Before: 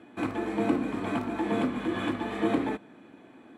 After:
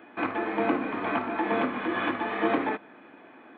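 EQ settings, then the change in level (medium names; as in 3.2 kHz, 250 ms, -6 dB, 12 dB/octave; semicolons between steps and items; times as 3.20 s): Gaussian low-pass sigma 3.7 samples; tilt EQ +3.5 dB/octave; bass shelf 330 Hz -5.5 dB; +8.0 dB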